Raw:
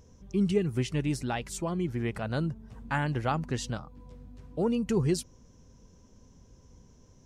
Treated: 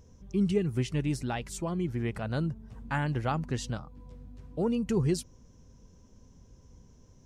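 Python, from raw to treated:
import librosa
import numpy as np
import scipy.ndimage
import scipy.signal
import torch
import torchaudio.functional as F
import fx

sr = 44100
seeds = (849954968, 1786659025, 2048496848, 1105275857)

y = fx.low_shelf(x, sr, hz=190.0, db=3.5)
y = y * 10.0 ** (-2.0 / 20.0)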